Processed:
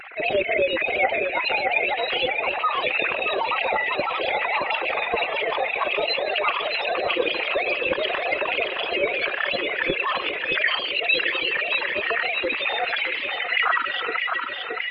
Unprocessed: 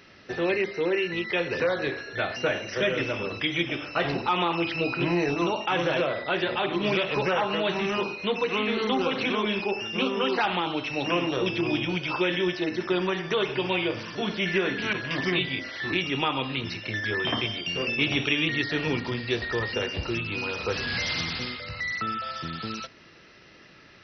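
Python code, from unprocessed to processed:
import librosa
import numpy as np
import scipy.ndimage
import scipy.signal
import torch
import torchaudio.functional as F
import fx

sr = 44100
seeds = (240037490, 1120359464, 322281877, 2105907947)

y = fx.sine_speech(x, sr)
y = fx.pitch_keep_formants(y, sr, semitones=6.5)
y = fx.echo_feedback(y, sr, ms=1017, feedback_pct=52, wet_db=-8.5)
y = fx.stretch_grains(y, sr, factor=0.62, grain_ms=185.0)
y = fx.env_flatten(y, sr, amount_pct=50)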